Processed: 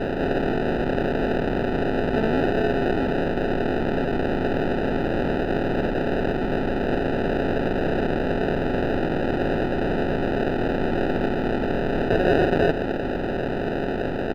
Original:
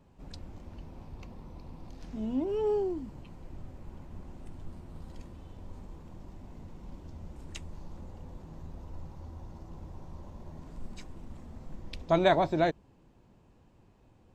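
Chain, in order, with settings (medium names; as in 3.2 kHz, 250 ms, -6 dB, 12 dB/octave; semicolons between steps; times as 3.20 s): spectral levelling over time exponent 0.2; comb 4.1 ms, depth 58%; sample-rate reducer 1.1 kHz, jitter 0%; distance through air 390 m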